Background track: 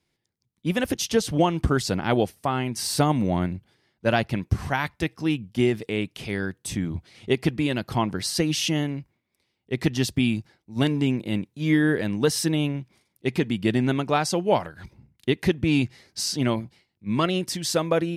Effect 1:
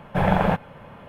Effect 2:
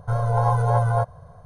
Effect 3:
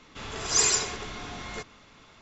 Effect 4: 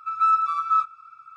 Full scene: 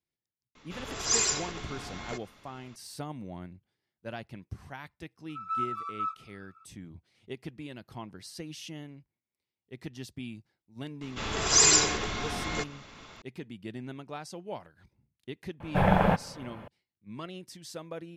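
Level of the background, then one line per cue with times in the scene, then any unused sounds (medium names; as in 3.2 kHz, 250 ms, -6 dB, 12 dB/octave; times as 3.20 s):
background track -18 dB
0.55 s: add 3 -3.5 dB
5.29 s: add 4 -12.5 dB
11.01 s: add 3 -8.5 dB + loudness maximiser +13 dB
15.60 s: add 1 -3 dB
not used: 2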